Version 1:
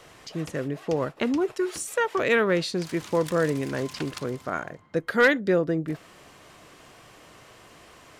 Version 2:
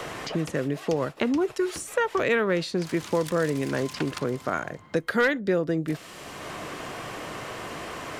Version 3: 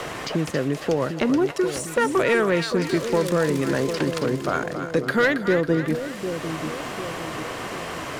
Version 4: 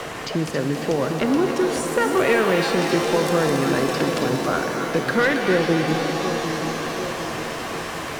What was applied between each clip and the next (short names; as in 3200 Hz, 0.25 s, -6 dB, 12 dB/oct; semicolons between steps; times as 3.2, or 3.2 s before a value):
three-band squash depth 70%
sample leveller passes 1; split-band echo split 660 Hz, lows 0.75 s, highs 0.274 s, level -8 dB
crackle 140/s -39 dBFS; shimmer reverb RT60 3.6 s, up +7 st, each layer -2 dB, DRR 6 dB